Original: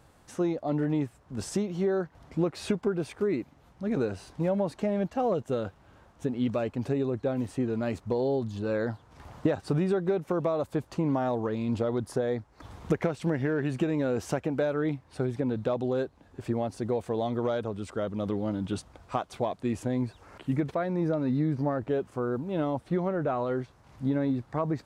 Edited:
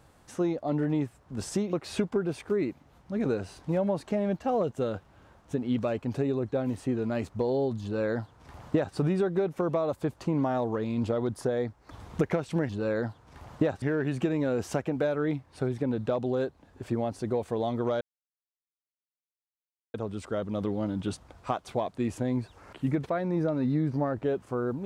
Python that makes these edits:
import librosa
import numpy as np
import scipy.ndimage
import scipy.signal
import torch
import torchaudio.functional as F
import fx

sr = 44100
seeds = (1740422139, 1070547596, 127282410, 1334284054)

y = fx.edit(x, sr, fx.cut(start_s=1.73, length_s=0.71),
    fx.duplicate(start_s=8.53, length_s=1.13, to_s=13.4),
    fx.insert_silence(at_s=17.59, length_s=1.93), tone=tone)